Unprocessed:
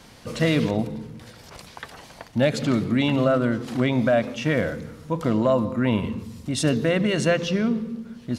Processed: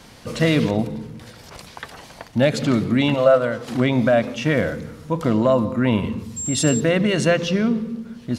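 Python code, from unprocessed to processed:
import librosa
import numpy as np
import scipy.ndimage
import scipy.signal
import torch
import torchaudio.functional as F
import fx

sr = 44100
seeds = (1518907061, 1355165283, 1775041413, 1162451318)

y = fx.low_shelf_res(x, sr, hz=430.0, db=-7.0, q=3.0, at=(3.14, 3.68))
y = fx.dmg_tone(y, sr, hz=7500.0, level_db=-28.0, at=(6.36, 6.79), fade=0.02)
y = y * librosa.db_to_amplitude(3.0)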